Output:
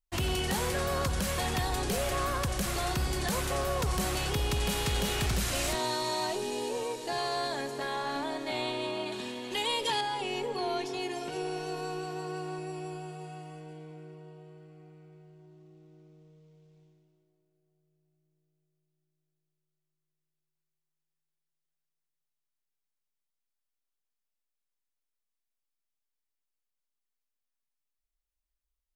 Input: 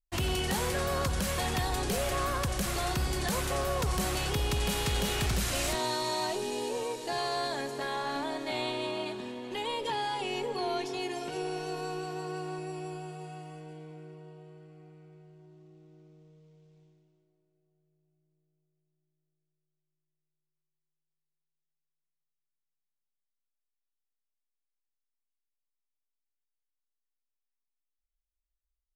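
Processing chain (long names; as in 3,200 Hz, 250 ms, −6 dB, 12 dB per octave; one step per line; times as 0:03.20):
0:09.12–0:10.01: high-shelf EQ 2,300 Hz +10.5 dB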